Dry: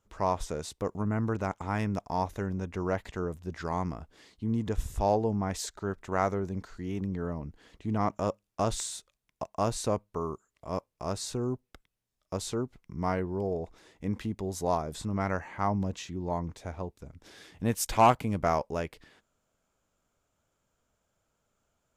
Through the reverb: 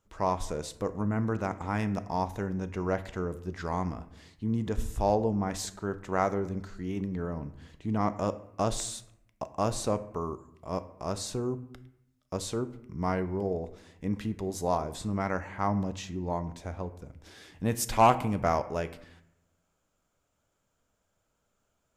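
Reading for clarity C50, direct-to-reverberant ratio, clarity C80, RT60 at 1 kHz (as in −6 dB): 15.0 dB, 11.0 dB, 17.5 dB, 0.75 s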